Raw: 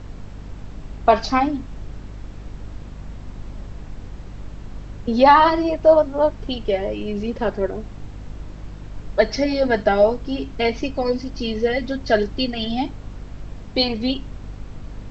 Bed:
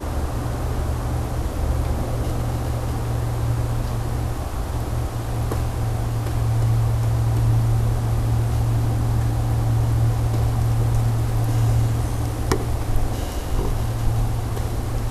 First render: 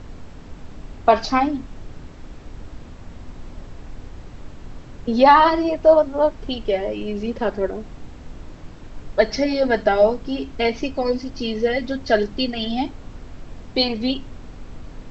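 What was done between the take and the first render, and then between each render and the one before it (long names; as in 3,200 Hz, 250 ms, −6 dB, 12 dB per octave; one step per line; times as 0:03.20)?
hum removal 50 Hz, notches 4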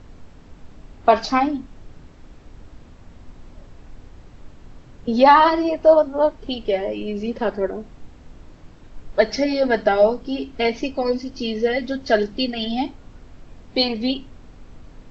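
noise reduction from a noise print 6 dB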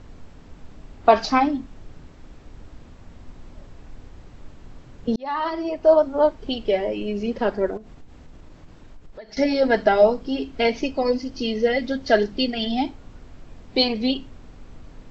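0:05.16–0:06.13: fade in
0:07.77–0:09.37: downward compressor, threshold −38 dBFS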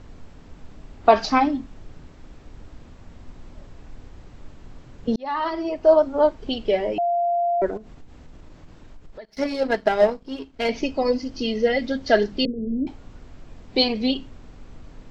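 0:06.98–0:07.62: beep over 693 Hz −18.5 dBFS
0:09.25–0:10.69: power curve on the samples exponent 1.4
0:12.45–0:12.87: Butterworth low-pass 560 Hz 96 dB per octave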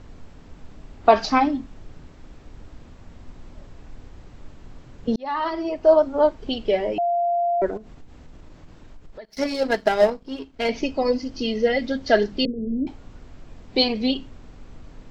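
0:09.30–0:10.10: high-shelf EQ 5,600 Hz +10.5 dB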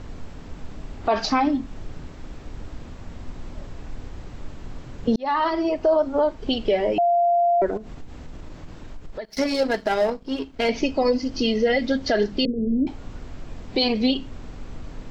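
in parallel at +1 dB: downward compressor, threshold −30 dBFS, peak gain reduction 20 dB
on the sum: brickwall limiter −11.5 dBFS, peak gain reduction 9.5 dB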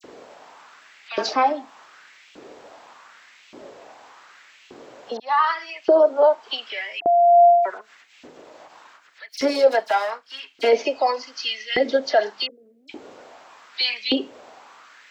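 all-pass dispersion lows, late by 41 ms, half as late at 2,800 Hz
auto-filter high-pass saw up 0.85 Hz 340–2,800 Hz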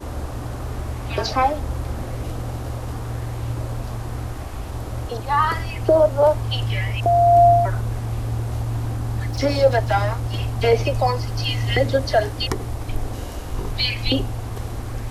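mix in bed −4.5 dB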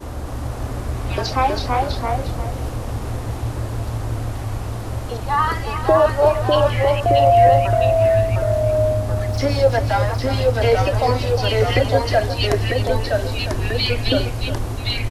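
delay with pitch and tempo change per echo 249 ms, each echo −1 semitone, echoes 2
single-tap delay 355 ms −10.5 dB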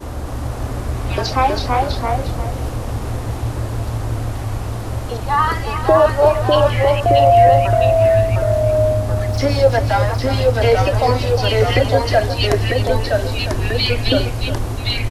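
level +2.5 dB
brickwall limiter −2 dBFS, peak gain reduction 1.5 dB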